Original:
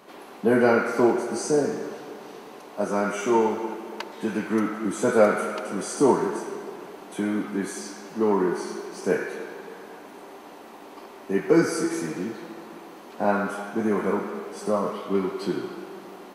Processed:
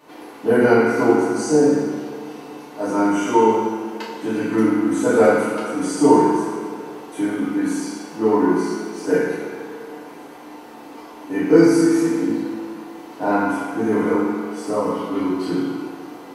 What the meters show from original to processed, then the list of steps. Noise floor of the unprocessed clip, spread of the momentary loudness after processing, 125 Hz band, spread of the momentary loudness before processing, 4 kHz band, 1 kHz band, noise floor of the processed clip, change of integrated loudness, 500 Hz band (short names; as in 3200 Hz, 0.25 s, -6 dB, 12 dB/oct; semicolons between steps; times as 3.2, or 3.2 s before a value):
-44 dBFS, 20 LU, +4.5 dB, 22 LU, +4.0 dB, +6.0 dB, -39 dBFS, +6.0 dB, +5.0 dB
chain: FDN reverb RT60 1 s, low-frequency decay 1.35×, high-frequency decay 0.8×, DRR -8.5 dB; gain -5 dB